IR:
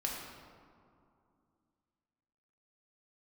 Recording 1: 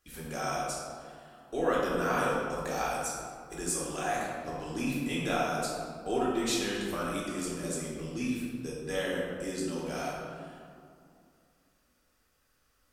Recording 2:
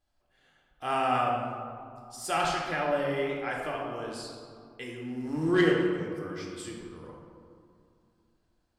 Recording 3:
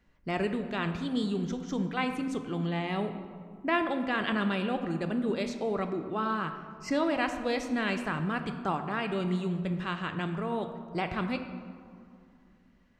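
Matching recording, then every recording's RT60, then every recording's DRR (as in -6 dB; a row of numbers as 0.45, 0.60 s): 2; 2.5, 2.5, 2.5 s; -7.0, -2.5, 6.5 dB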